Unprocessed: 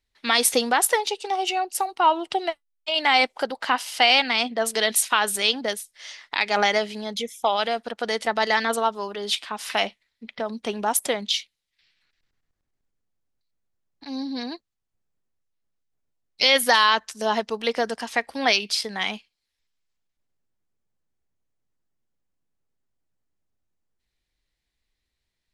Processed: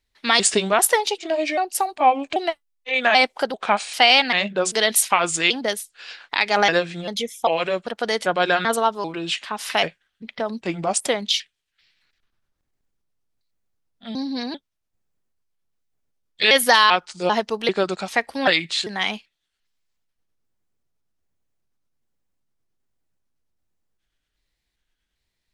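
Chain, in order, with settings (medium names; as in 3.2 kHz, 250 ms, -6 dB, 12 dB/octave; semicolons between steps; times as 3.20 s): pitch shift switched off and on -3.5 st, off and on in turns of 393 ms; trim +3 dB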